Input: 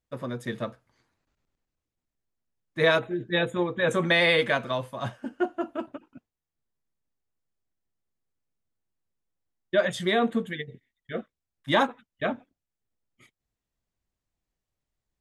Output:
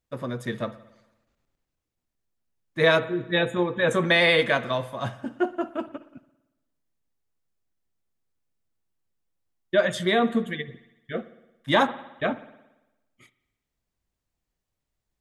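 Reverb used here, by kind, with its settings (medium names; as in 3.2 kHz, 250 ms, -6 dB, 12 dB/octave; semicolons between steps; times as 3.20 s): spring tank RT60 1 s, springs 56 ms, chirp 35 ms, DRR 15.5 dB; trim +2 dB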